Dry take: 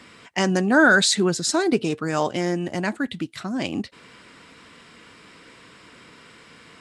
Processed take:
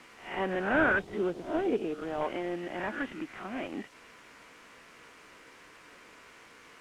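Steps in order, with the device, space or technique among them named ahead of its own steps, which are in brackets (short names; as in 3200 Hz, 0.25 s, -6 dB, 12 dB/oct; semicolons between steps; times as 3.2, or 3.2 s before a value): spectral swells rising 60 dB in 0.42 s; army field radio (BPF 330–3000 Hz; CVSD 16 kbps; white noise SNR 23 dB); 0.99–2.21 band shelf 1600 Hz -8 dB; LPF 6500 Hz 12 dB/oct; gain -6 dB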